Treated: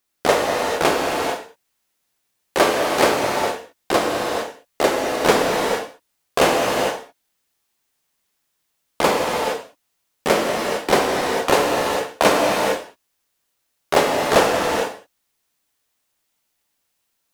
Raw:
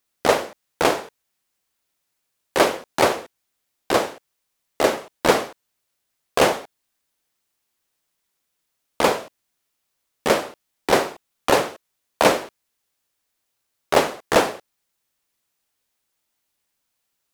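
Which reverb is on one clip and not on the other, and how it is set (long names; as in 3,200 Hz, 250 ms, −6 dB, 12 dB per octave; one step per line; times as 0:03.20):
reverb whose tail is shaped and stops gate 480 ms flat, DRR −1 dB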